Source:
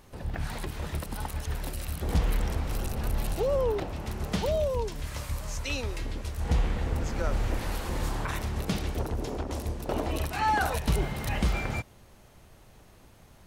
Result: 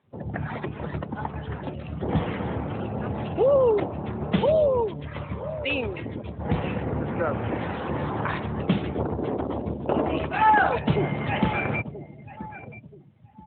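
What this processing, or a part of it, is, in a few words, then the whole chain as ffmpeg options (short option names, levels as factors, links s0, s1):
mobile call with aggressive noise cancelling: -af "highpass=100,aecho=1:1:979|1958|2937:0.188|0.0697|0.0258,afftdn=nr=20:nf=-43,volume=2.51" -ar 8000 -c:a libopencore_amrnb -b:a 12200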